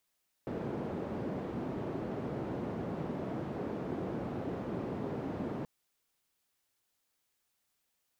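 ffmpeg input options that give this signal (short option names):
-f lavfi -i "anoisesrc=c=white:d=5.18:r=44100:seed=1,highpass=f=120,lowpass=f=380,volume=-13.9dB"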